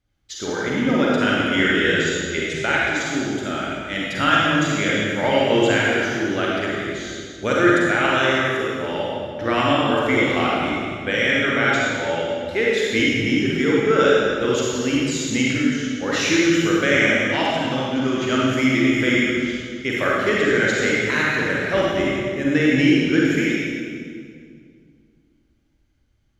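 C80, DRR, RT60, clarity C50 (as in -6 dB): -1.5 dB, -5.5 dB, 2.1 s, -3.5 dB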